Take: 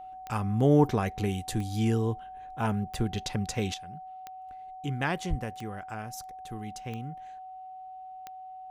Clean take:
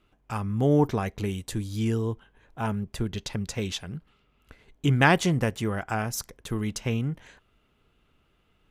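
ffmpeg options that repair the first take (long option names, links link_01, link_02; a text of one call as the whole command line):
ffmpeg -i in.wav -filter_complex "[0:a]adeclick=threshold=4,bandreject=frequency=750:width=30,asplit=3[link_01][link_02][link_03];[link_01]afade=type=out:start_time=5.29:duration=0.02[link_04];[link_02]highpass=frequency=140:width=0.5412,highpass=frequency=140:width=1.3066,afade=type=in:start_time=5.29:duration=0.02,afade=type=out:start_time=5.41:duration=0.02[link_05];[link_03]afade=type=in:start_time=5.41:duration=0.02[link_06];[link_04][link_05][link_06]amix=inputs=3:normalize=0,asetnsamples=nb_out_samples=441:pad=0,asendcmd='3.74 volume volume 10.5dB',volume=0dB" out.wav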